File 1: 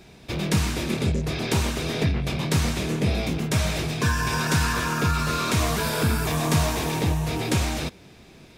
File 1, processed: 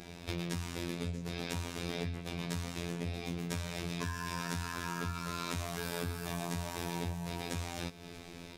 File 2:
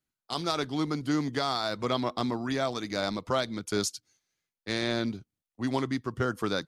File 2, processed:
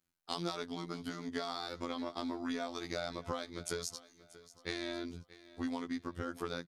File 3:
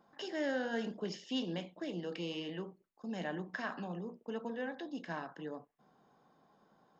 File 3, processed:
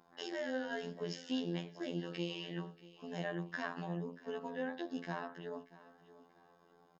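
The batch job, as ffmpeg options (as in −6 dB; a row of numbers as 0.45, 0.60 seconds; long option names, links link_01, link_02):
-af "acompressor=threshold=-35dB:ratio=16,afftfilt=real='hypot(re,im)*cos(PI*b)':imag='0':win_size=2048:overlap=0.75,aecho=1:1:634|1268|1902:0.119|0.0416|0.0146,volume=4dB"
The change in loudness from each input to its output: −14.0, −9.5, −1.0 LU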